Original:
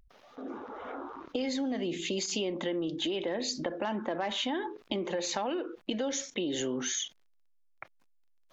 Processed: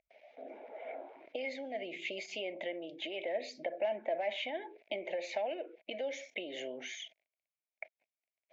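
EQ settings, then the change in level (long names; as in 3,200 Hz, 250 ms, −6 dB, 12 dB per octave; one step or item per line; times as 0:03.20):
pair of resonant band-passes 1,200 Hz, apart 1.8 octaves
+6.0 dB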